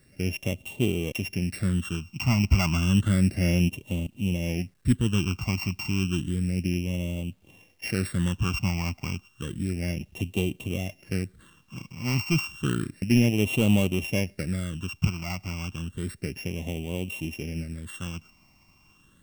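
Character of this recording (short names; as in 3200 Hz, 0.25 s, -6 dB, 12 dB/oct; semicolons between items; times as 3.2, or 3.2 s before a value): a buzz of ramps at a fixed pitch in blocks of 16 samples; phasing stages 8, 0.31 Hz, lowest notch 480–1600 Hz; a quantiser's noise floor 12-bit, dither none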